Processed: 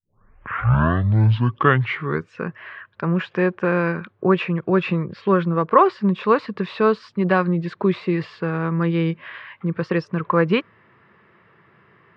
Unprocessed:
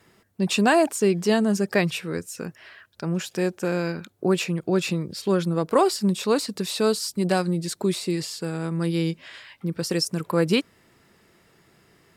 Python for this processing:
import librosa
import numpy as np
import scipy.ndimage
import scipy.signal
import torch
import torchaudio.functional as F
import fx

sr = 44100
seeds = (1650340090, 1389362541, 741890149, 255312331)

p1 = fx.tape_start_head(x, sr, length_s=2.36)
p2 = fx.rider(p1, sr, range_db=3, speed_s=0.5)
p3 = p1 + (p2 * 10.0 ** (0.5 / 20.0))
p4 = fx.cabinet(p3, sr, low_hz=110.0, low_slope=12, high_hz=2700.0, hz=(110.0, 280.0, 720.0, 1100.0, 1700.0), db=(6, -7, -4, 9, 4))
y = p4 * 10.0 ** (-1.5 / 20.0)